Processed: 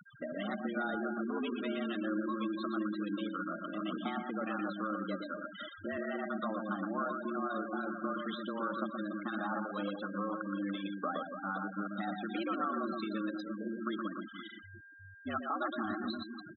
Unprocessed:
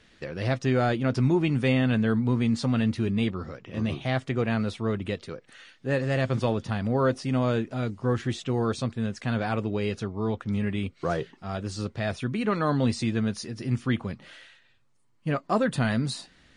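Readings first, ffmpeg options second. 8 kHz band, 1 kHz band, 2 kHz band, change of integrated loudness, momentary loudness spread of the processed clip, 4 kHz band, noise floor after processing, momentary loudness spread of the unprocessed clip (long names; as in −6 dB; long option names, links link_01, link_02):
below −35 dB, −4.0 dB, −6.5 dB, −10.0 dB, 5 LU, −9.5 dB, −53 dBFS, 10 LU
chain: -filter_complex "[0:a]afreqshift=96,highpass=50,alimiter=limit=-19dB:level=0:latency=1:release=18,asubboost=boost=2.5:cutoff=110,acompressor=mode=upward:threshold=-34dB:ratio=2.5,superequalizer=7b=0.501:10b=3.16:13b=2.51:15b=2,acrossover=split=970[link_01][link_02];[link_01]aeval=exprs='val(0)*(1-0.5/2+0.5/2*cos(2*PI*2.7*n/s))':channel_layout=same[link_03];[link_02]aeval=exprs='val(0)*(1-0.5/2-0.5/2*cos(2*PI*2.7*n/s))':channel_layout=same[link_04];[link_03][link_04]amix=inputs=2:normalize=0,acrossover=split=1200|2900[link_05][link_06][link_07];[link_05]acompressor=threshold=-37dB:ratio=4[link_08];[link_06]acompressor=threshold=-43dB:ratio=4[link_09];[link_07]acompressor=threshold=-52dB:ratio=4[link_10];[link_08][link_09][link_10]amix=inputs=3:normalize=0,aeval=exprs='val(0)+0.00126*sin(2*PI*1600*n/s)':channel_layout=same,asplit=2[link_11][link_12];[link_12]aecho=0:1:120|288|523.2|852.5|1313:0.631|0.398|0.251|0.158|0.1[link_13];[link_11][link_13]amix=inputs=2:normalize=0,afftfilt=real='re*gte(hypot(re,im),0.0224)':imag='im*gte(hypot(re,im),0.0224)':win_size=1024:overlap=0.75"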